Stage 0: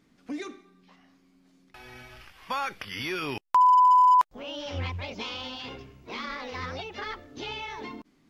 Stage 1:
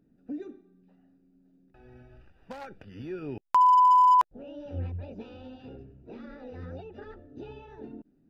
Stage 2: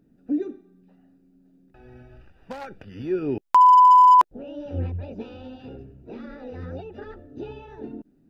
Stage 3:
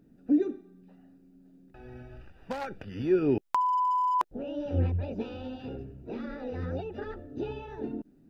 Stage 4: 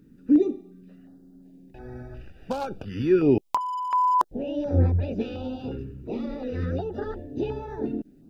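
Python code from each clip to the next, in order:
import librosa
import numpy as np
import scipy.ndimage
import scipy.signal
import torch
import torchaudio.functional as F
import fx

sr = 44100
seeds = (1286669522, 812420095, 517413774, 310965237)

y1 = fx.wiener(x, sr, points=41)
y2 = fx.dynamic_eq(y1, sr, hz=340.0, q=0.96, threshold_db=-42.0, ratio=4.0, max_db=8)
y2 = F.gain(torch.from_numpy(y2), 5.0).numpy()
y3 = fx.over_compress(y2, sr, threshold_db=-17.0, ratio=-0.5)
y3 = F.gain(torch.from_numpy(y3), -4.0).numpy()
y4 = fx.filter_held_notch(y3, sr, hz=2.8, low_hz=690.0, high_hz=2900.0)
y4 = F.gain(torch.from_numpy(y4), 6.5).numpy()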